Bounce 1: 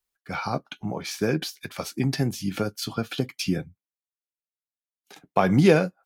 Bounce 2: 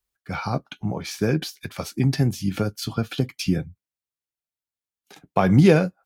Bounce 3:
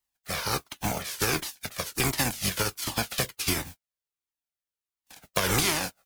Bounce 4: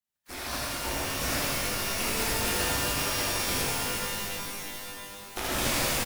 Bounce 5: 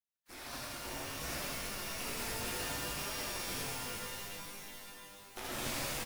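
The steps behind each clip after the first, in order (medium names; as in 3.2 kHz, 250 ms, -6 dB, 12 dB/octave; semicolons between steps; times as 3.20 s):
peaking EQ 60 Hz +9.5 dB 2.8 oct
spectral contrast reduction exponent 0.31; compression 5:1, threshold -20 dBFS, peak gain reduction 10 dB; Shepard-style flanger falling 1.4 Hz; trim +2.5 dB
delay 80 ms -4 dB; ring modulator 170 Hz; pitch-shifted reverb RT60 3.4 s, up +12 st, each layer -2 dB, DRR -7 dB; trim -8 dB
flange 0.63 Hz, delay 4.3 ms, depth 4.5 ms, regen -48%; trim -6.5 dB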